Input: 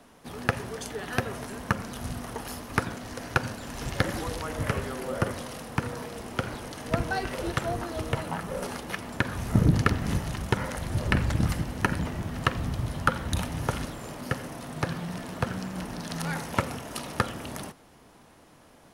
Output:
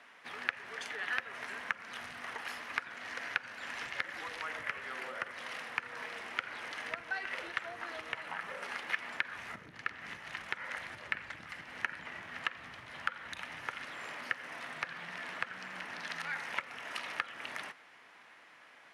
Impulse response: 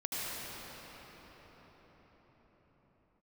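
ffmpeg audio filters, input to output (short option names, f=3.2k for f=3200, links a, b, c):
-af "acompressor=threshold=-33dB:ratio=10,bandpass=f=2k:t=q:w=2.1:csg=0,volume=8dB"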